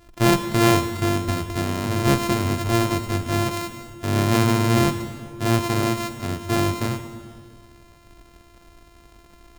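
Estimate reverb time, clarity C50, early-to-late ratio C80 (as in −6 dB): 1.9 s, 9.5 dB, 10.5 dB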